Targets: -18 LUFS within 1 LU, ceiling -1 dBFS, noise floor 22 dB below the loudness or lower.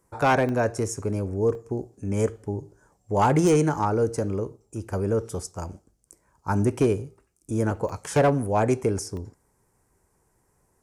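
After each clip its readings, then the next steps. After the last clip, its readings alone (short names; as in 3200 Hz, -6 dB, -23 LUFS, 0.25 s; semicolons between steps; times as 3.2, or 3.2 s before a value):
clipped 0.3%; flat tops at -13.5 dBFS; dropouts 4; longest dropout 1.3 ms; loudness -25.0 LUFS; peak -13.5 dBFS; loudness target -18.0 LUFS
-> clip repair -13.5 dBFS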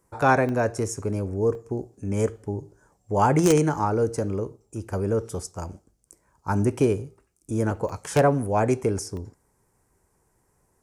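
clipped 0.0%; dropouts 4; longest dropout 1.3 ms
-> interpolate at 0.49/1.55/7.89/9.17, 1.3 ms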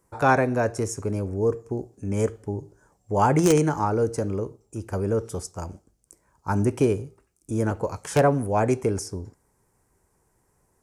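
dropouts 0; loudness -25.0 LUFS; peak -4.5 dBFS; loudness target -18.0 LUFS
-> gain +7 dB; limiter -1 dBFS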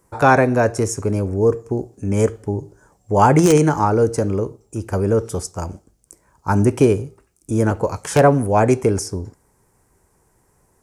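loudness -18.0 LUFS; peak -1.0 dBFS; noise floor -62 dBFS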